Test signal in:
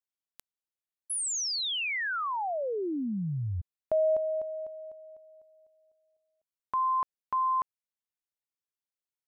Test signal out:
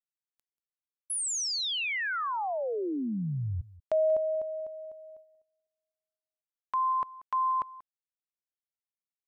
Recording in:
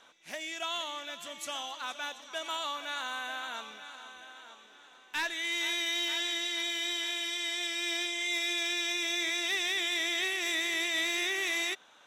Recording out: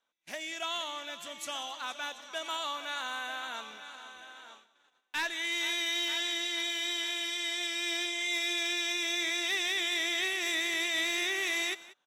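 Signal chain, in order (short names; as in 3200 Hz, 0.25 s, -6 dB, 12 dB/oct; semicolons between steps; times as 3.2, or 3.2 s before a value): gate -53 dBFS, range -24 dB; on a send: echo 0.186 s -19.5 dB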